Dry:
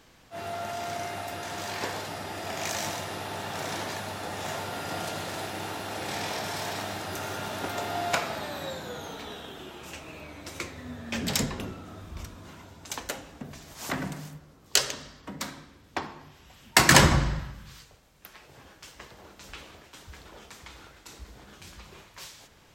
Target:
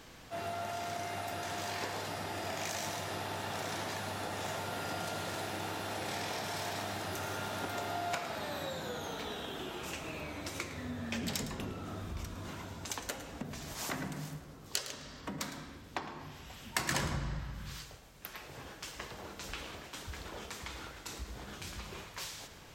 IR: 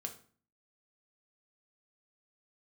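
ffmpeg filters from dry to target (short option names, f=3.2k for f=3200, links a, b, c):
-filter_complex "[0:a]acompressor=threshold=-42dB:ratio=3,asplit=2[a][b];[1:a]atrim=start_sample=2205,adelay=109[c];[b][c]afir=irnorm=-1:irlink=0,volume=-10.5dB[d];[a][d]amix=inputs=2:normalize=0,volume=3.5dB"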